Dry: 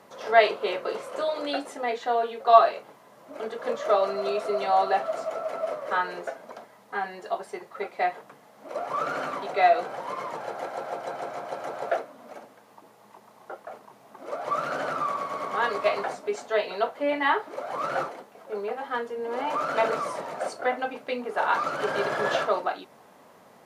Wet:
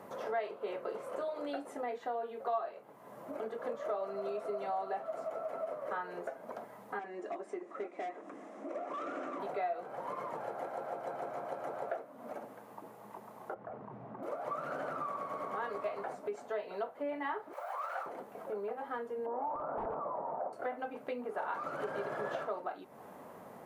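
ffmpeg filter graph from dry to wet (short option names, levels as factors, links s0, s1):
-filter_complex "[0:a]asettb=1/sr,asplit=3[s0][s1][s2];[s0]atrim=end=6.994[s3];[s1]atrim=start=6.99:end=9.4,asetpts=PTS-STARTPTS,afade=t=in:d=0.004:c=qsin,afade=t=out:st=2.406:d=0.004:c=qsin,acompressor=mode=upward:threshold=0.00891:ratio=2.5:attack=3.2:release=140:knee=2.83:detection=peak,asoftclip=type=hard:threshold=0.0398,highpass=f=230:w=0.5412,highpass=f=230:w=1.3066,equalizer=f=320:t=q:w=4:g=9,equalizer=f=470:t=q:w=4:g=-5,equalizer=f=880:t=q:w=4:g=-9,equalizer=f=1500:t=q:w=4:g=-5,equalizer=f=3100:t=q:w=4:g=-4,equalizer=f=4400:t=q:w=4:g=-9,lowpass=f=7700:w=0.5412,lowpass=f=7700:w=1.3066[s4];[s2]atrim=start=9.396[s5];[s3][s4]acrossfade=d=0.004:c1=hsin:c2=qsin[s6];[s6][s5]acrossfade=d=0.004:c1=qsin:c2=hsin,asettb=1/sr,asplit=3[s7][s8][s9];[s7]atrim=end=13.544[s10];[s8]atrim=start=13.54:end=14.23,asetpts=PTS-STARTPTS,afade=t=in:d=0.004:c=qsin,afade=t=out:st=0.686:d=0.004:c=qsin,lowpass=2200,equalizer=f=100:t=o:w=2.1:g=13,acompressor=threshold=0.00501:ratio=2:attack=3.2:release=140:knee=1:detection=peak[s11];[s9]atrim=start=14.226[s12];[s10][s11]acrossfade=d=0.004:c1=hsin:c2=qsin[s13];[s13][s12]acrossfade=d=0.004:c1=qsin:c2=hsin,asettb=1/sr,asplit=3[s14][s15][s16];[s14]atrim=end=17.534[s17];[s15]atrim=start=17.53:end=18.06,asetpts=PTS-STARTPTS,afade=t=in:d=0.004:c=qsin,afade=t=out:st=0.526:d=0.004:c=qsin,aeval=exprs='val(0)*gte(abs(val(0)),0.00335)':c=same,highpass=f=690:w=0.5412,highpass=f=690:w=1.3066[s18];[s16]atrim=start=18.056[s19];[s17][s18]acrossfade=d=0.004:c1=hsin:c2=qsin[s20];[s20][s19]acrossfade=d=0.004:c1=qsin:c2=hsin,asettb=1/sr,asplit=3[s21][s22][s23];[s21]atrim=end=19.264[s24];[s22]atrim=start=19.26:end=20.53,asetpts=PTS-STARTPTS,afade=t=in:d=0.004:c=qsin,afade=t=out:st=1.266:d=0.004:c=qsin,aeval=exprs='(mod(8.91*val(0)+1,2)-1)/8.91':c=same,acompressor=threshold=0.0398:ratio=2.5:attack=3.2:release=140:knee=1:detection=peak,lowpass=f=900:t=q:w=3[s25];[s23]atrim=start=20.526[s26];[s24][s25]acrossfade=d=0.004:c1=hsin:c2=qsin[s27];[s27][s26]acrossfade=d=0.004:c1=qsin:c2=hsin,equalizer=f=4600:w=0.52:g=-12.5,acompressor=threshold=0.00631:ratio=3,volume=1.58"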